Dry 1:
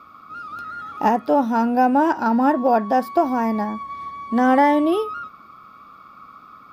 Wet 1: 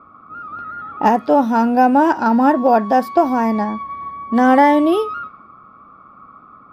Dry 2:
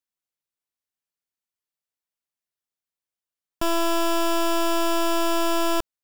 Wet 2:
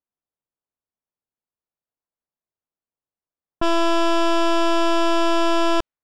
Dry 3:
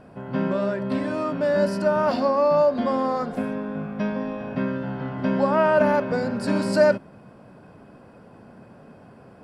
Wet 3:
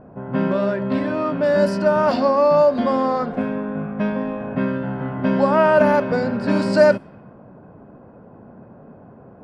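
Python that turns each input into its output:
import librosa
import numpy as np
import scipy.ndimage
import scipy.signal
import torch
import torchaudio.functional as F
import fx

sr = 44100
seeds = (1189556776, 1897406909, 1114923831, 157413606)

y = fx.env_lowpass(x, sr, base_hz=1000.0, full_db=-16.0)
y = F.gain(torch.from_numpy(y), 4.0).numpy()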